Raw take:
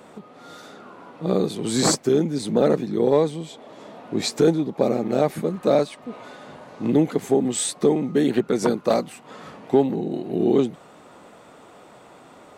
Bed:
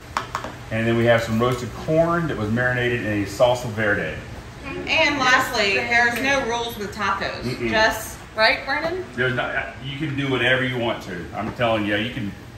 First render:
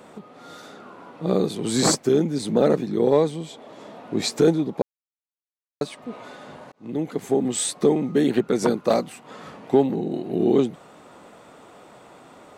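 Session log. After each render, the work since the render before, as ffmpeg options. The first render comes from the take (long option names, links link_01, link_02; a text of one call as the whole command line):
ffmpeg -i in.wav -filter_complex "[0:a]asplit=4[link_01][link_02][link_03][link_04];[link_01]atrim=end=4.82,asetpts=PTS-STARTPTS,afade=type=out:start_time=4.816:duration=0.004:curve=hsin[link_05];[link_02]atrim=start=4.82:end=5.81,asetpts=PTS-STARTPTS,volume=0[link_06];[link_03]atrim=start=5.81:end=6.72,asetpts=PTS-STARTPTS,afade=type=in:duration=0.004:curve=hsin,afade=type=out:start_time=0.906:duration=0.004:curve=hsin[link_07];[link_04]atrim=start=6.72,asetpts=PTS-STARTPTS,afade=type=in:duration=1.06:curve=qsin[link_08];[link_05][link_06][link_07][link_08]concat=n=4:v=0:a=1" out.wav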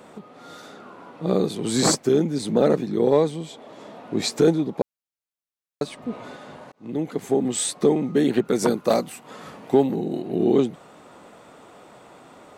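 ffmpeg -i in.wav -filter_complex "[0:a]asettb=1/sr,asplit=3[link_01][link_02][link_03];[link_01]atrim=end=5.874[link_04];[link_02]atrim=start=5.87:end=6.37,asetpts=PTS-STARTPTS,afade=type=in:duration=0.004:curve=qsin,afade=type=out:start_time=0.496:duration=0.004:curve=qsin,lowshelf=frequency=300:gain=8.5[link_05];[link_03]atrim=start=6.366[link_06];[link_04][link_05]acrossfade=duration=0.004:curve1=hsin:curve2=qsin[link_07];[link_07][link_06]acrossfade=duration=0.004:curve1=qsin:curve2=hsin,asettb=1/sr,asplit=3[link_08][link_09][link_10];[link_08]atrim=end=8.454[link_11];[link_09]atrim=start=8.45:end=10.22,asetpts=PTS-STARTPTS,afade=type=in:duration=0.004:curve=qsin,afade=type=out:start_time=1.766:duration=0.004:curve=qsin,highshelf=frequency=10000:gain=11.5[link_12];[link_10]atrim=start=10.216[link_13];[link_11][link_12]acrossfade=duration=0.004:curve1=hsin:curve2=qsin[link_14];[link_14][link_13]acrossfade=duration=0.004:curve1=qsin:curve2=hsin" out.wav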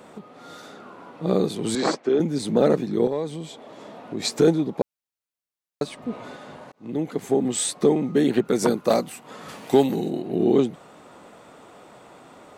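ffmpeg -i in.wav -filter_complex "[0:a]asettb=1/sr,asplit=3[link_01][link_02][link_03];[link_01]atrim=end=1.754[link_04];[link_02]atrim=start=1.75:end=2.2,asetpts=PTS-STARTPTS,afade=type=in:duration=0.004:curve=qsin,afade=type=out:start_time=0.446:duration=0.004:curve=qsin,highpass=300,lowpass=3100[link_05];[link_03]atrim=start=2.196[link_06];[link_04][link_05]acrossfade=duration=0.004:curve1=hsin:curve2=qsin[link_07];[link_07][link_06]acrossfade=duration=0.004:curve1=qsin:curve2=hsin,asettb=1/sr,asplit=3[link_08][link_09][link_10];[link_08]atrim=end=3.074[link_11];[link_09]atrim=start=3.07:end=4.25,asetpts=PTS-STARTPTS,afade=type=in:duration=0.004:curve=qsin,afade=type=out:start_time=1.176:duration=0.004:curve=qsin,acompressor=threshold=-29dB:ratio=2:attack=3.2:release=140:knee=1:detection=peak[link_12];[link_10]atrim=start=4.246[link_13];[link_11][link_12]acrossfade=duration=0.004:curve1=hsin:curve2=qsin[link_14];[link_14][link_13]acrossfade=duration=0.004:curve1=qsin:curve2=hsin,asplit=3[link_15][link_16][link_17];[link_15]afade=type=out:start_time=9.48:duration=0.02[link_18];[link_16]highshelf=frequency=2200:gain=12,afade=type=in:start_time=9.48:duration=0.02,afade=type=out:start_time=10.09:duration=0.02[link_19];[link_17]afade=type=in:start_time=10.09:duration=0.02[link_20];[link_18][link_19][link_20]amix=inputs=3:normalize=0" out.wav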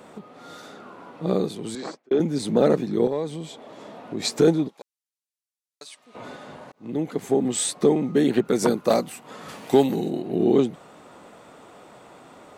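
ffmpeg -i in.wav -filter_complex "[0:a]asplit=3[link_01][link_02][link_03];[link_01]afade=type=out:start_time=4.67:duration=0.02[link_04];[link_02]bandpass=frequency=7700:width_type=q:width=0.61,afade=type=in:start_time=4.67:duration=0.02,afade=type=out:start_time=6.14:duration=0.02[link_05];[link_03]afade=type=in:start_time=6.14:duration=0.02[link_06];[link_04][link_05][link_06]amix=inputs=3:normalize=0,asplit=2[link_07][link_08];[link_07]atrim=end=2.11,asetpts=PTS-STARTPTS,afade=type=out:start_time=1.19:duration=0.92[link_09];[link_08]atrim=start=2.11,asetpts=PTS-STARTPTS,afade=type=in:duration=0.004:curve=hsin[link_10];[link_09][link_10]concat=n=2:v=0:a=1" out.wav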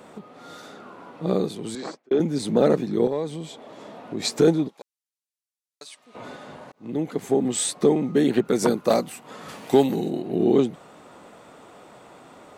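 ffmpeg -i in.wav -af anull out.wav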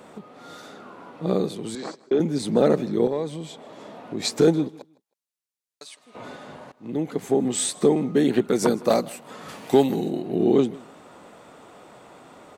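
ffmpeg -i in.wav -af "aecho=1:1:158|316:0.0794|0.0159" out.wav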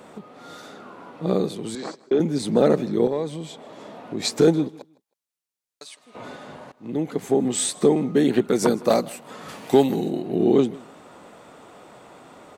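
ffmpeg -i in.wav -af "volume=1dB" out.wav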